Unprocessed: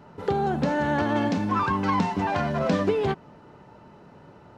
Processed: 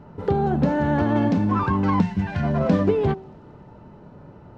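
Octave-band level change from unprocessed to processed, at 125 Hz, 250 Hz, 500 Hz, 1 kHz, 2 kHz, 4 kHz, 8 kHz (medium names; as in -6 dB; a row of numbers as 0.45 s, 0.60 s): +7.0 dB, +5.0 dB, +2.5 dB, -0.5 dB, -2.0 dB, -4.5 dB, no reading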